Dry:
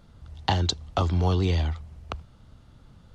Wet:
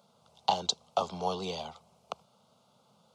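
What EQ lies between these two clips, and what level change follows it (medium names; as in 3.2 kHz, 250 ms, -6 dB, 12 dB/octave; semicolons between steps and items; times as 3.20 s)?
high-pass 210 Hz 24 dB/octave; static phaser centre 740 Hz, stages 4; 0.0 dB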